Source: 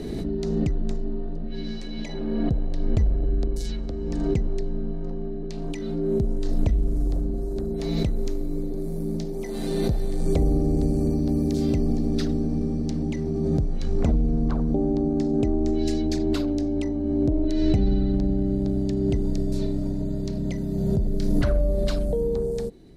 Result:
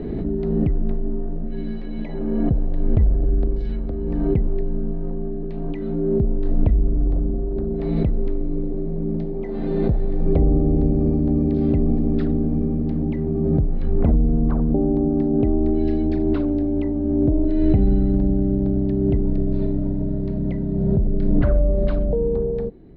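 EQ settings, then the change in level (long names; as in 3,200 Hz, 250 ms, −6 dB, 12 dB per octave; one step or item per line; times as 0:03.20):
low-pass filter 2,200 Hz 6 dB per octave
high-frequency loss of the air 410 metres
+4.5 dB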